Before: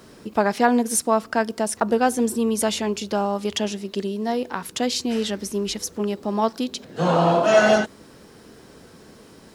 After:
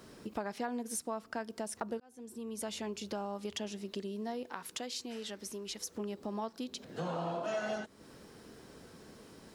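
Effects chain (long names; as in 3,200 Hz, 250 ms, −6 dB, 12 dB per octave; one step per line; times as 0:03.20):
downward compressor 3 to 1, threshold −31 dBFS, peak gain reduction 15 dB
0:02.00–0:02.73: fade in
0:04.46–0:05.95: low-shelf EQ 280 Hz −9.5 dB
level −7 dB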